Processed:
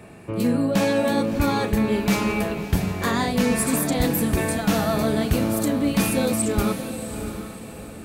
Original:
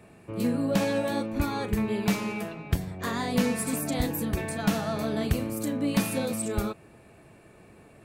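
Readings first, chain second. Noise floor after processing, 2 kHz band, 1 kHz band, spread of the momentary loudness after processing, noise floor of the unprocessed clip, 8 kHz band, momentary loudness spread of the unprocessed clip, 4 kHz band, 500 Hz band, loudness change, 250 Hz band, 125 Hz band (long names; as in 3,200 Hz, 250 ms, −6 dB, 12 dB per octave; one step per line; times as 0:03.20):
−39 dBFS, +7.0 dB, +7.0 dB, 10 LU, −54 dBFS, +7.5 dB, 6 LU, +6.5 dB, +7.0 dB, +6.0 dB, +6.5 dB, +6.0 dB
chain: feedback delay with all-pass diffusion 672 ms, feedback 41%, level −11 dB
reversed playback
downward compressor, threshold −25 dBFS, peak gain reduction 7.5 dB
reversed playback
level +8.5 dB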